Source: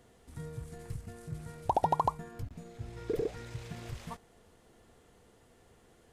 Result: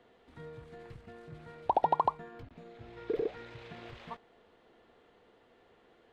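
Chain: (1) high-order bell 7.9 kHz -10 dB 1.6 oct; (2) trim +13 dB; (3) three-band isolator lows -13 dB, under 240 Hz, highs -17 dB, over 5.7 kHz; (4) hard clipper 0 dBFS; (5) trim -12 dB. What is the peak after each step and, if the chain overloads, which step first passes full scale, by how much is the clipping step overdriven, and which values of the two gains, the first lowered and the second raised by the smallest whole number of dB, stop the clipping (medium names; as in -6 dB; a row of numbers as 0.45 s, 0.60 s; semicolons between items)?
-15.5 dBFS, -2.5 dBFS, -2.5 dBFS, -2.5 dBFS, -14.5 dBFS; nothing clips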